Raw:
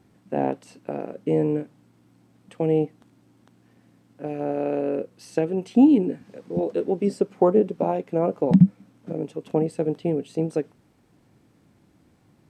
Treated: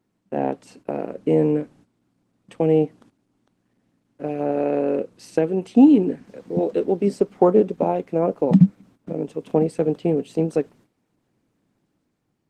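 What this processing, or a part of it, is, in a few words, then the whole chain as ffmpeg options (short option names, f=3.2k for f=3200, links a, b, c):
video call: -af "highpass=120,dynaudnorm=f=110:g=11:m=4dB,agate=range=-12dB:threshold=-48dB:ratio=16:detection=peak" -ar 48000 -c:a libopus -b:a 16k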